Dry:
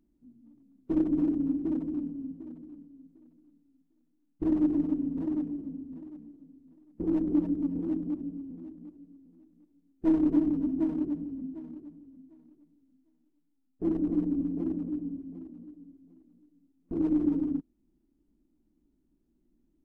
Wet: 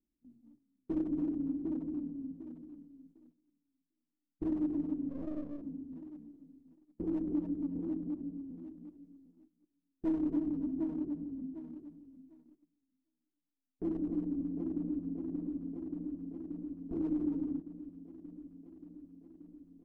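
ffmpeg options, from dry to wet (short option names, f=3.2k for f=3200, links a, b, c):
-filter_complex "[0:a]asettb=1/sr,asplit=3[a][b][c];[a]atrim=end=5.094[d];[b]atrim=start=5.09:end=5.62,asetpts=PTS-STARTPTS,afade=t=in:d=0.004:c=qsin,afade=t=out:st=0.526:d=0.004:c=qsin,aeval=exprs='if(lt(val(0),0),0.251*val(0),val(0))':c=same[e];[c]atrim=start=5.616[f];[d][e]acrossfade=d=0.004:c1=hsin:c2=qsin[g];[g][f]acrossfade=d=0.004:c1=qsin:c2=hsin,asplit=2[h][i];[i]afade=t=in:st=14.18:d=0.01,afade=t=out:st=15.27:d=0.01,aecho=0:1:580|1160|1740|2320|2900|3480|4060|4640|5220|5800|6380|6960:0.595662|0.446747|0.33506|0.251295|0.188471|0.141353|0.106015|0.0795113|0.0596335|0.0447251|0.0335438|0.0251579[j];[h][j]amix=inputs=2:normalize=0,agate=range=-13dB:threshold=-57dB:ratio=16:detection=peak,acompressor=threshold=-33dB:ratio=1.5,adynamicequalizer=threshold=0.00282:dfrequency=1500:dqfactor=0.7:tfrequency=1500:tqfactor=0.7:attack=5:release=100:ratio=0.375:range=2.5:mode=cutabove:tftype=highshelf,volume=-3.5dB"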